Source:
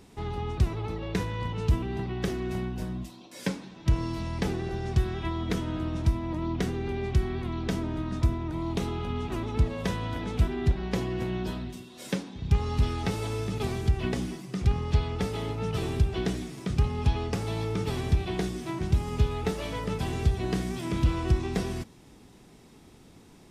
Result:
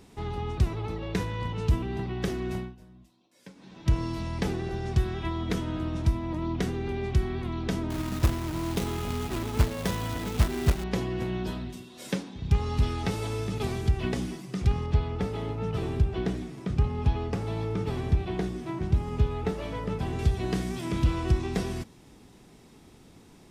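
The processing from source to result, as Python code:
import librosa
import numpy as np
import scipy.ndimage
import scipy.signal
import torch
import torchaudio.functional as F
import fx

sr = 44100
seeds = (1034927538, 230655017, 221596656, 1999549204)

y = fx.quant_companded(x, sr, bits=4, at=(7.9, 10.84))
y = fx.high_shelf(y, sr, hz=2900.0, db=-10.0, at=(14.86, 20.19))
y = fx.edit(y, sr, fx.fade_down_up(start_s=2.54, length_s=1.23, db=-18.5, fade_s=0.22), tone=tone)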